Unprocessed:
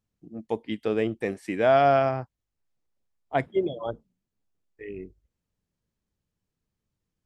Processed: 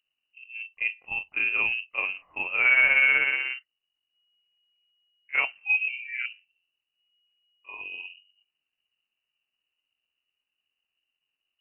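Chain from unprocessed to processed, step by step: granular stretch 1.6×, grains 0.124 s; vibrato 0.98 Hz 36 cents; inverted band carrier 2900 Hz

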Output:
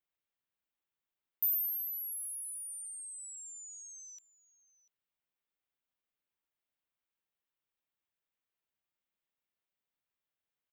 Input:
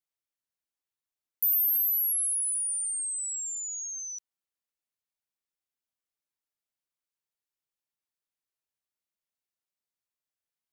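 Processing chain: band shelf 7600 Hz -14.5 dB; echo 0.692 s -20.5 dB; gain +1.5 dB

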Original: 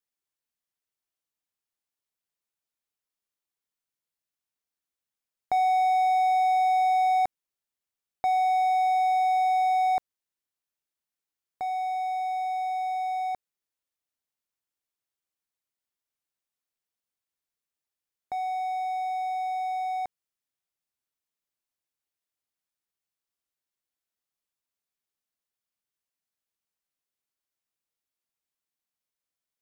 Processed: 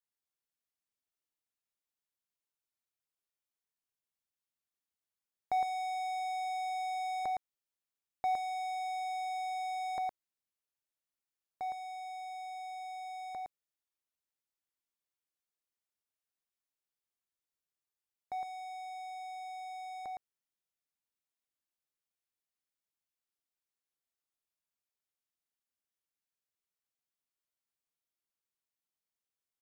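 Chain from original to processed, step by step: echo 0.112 s -4 dB; gain -7 dB

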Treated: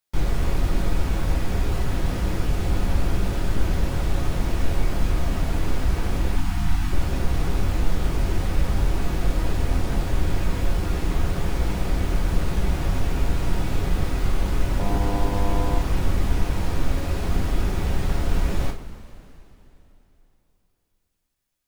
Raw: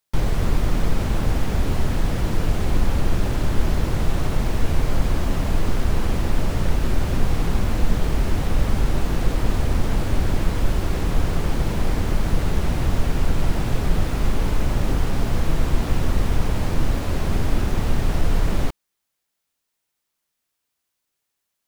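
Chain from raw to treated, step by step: 14.78–15.78 buzz 100 Hz, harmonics 10, -28 dBFS 0 dB/oct; two-slope reverb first 0.28 s, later 3.3 s, from -19 dB, DRR 0 dB; 6.36–6.92 spectral delete 340–680 Hz; gain -5 dB

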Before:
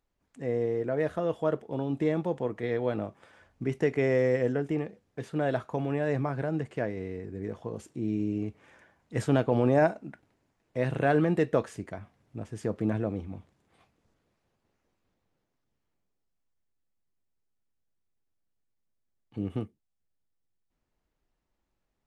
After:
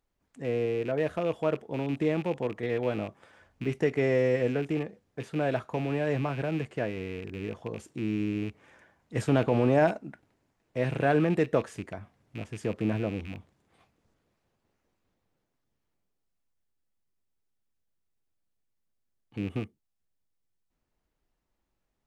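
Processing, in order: rattling part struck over -37 dBFS, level -33 dBFS; 9.28–9.98 transient shaper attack 0 dB, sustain +5 dB

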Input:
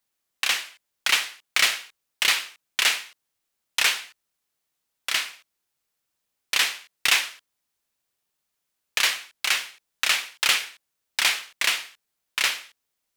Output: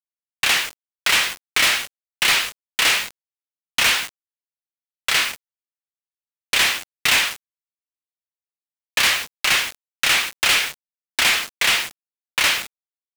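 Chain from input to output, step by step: high shelf 5000 Hz -6 dB; bit-crush 7-bit; sample leveller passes 5; gain -5 dB

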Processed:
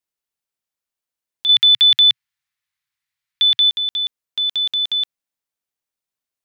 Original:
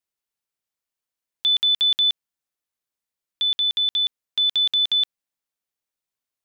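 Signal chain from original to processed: 1.49–3.7 graphic EQ 125/250/500/1000/2000/4000 Hz +11/-11/-11/+3/+11/+5 dB

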